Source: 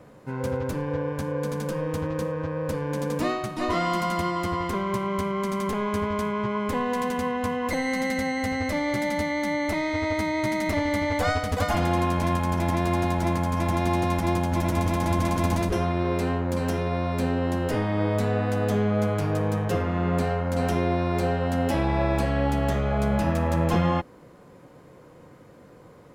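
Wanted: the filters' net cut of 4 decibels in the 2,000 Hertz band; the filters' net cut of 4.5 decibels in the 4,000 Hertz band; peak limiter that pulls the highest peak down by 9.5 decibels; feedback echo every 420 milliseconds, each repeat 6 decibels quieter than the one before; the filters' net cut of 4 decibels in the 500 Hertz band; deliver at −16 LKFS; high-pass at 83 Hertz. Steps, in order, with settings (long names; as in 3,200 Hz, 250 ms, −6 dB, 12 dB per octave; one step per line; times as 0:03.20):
high-pass filter 83 Hz
parametric band 500 Hz −5 dB
parametric band 2,000 Hz −3.5 dB
parametric band 4,000 Hz −4.5 dB
brickwall limiter −21.5 dBFS
repeating echo 420 ms, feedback 50%, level −6 dB
level +13.5 dB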